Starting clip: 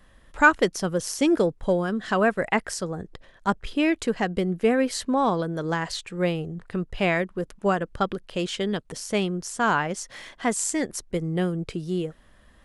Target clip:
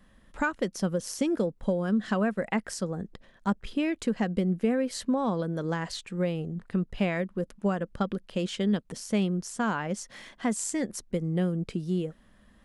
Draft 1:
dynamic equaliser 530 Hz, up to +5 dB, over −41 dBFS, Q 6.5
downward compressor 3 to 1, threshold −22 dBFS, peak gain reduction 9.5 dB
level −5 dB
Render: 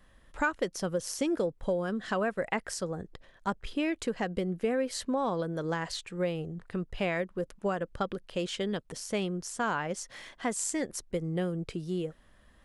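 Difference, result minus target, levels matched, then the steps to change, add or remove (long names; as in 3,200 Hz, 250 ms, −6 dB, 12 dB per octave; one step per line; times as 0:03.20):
250 Hz band −3.0 dB
add after downward compressor: parametric band 210 Hz +9.5 dB 0.67 octaves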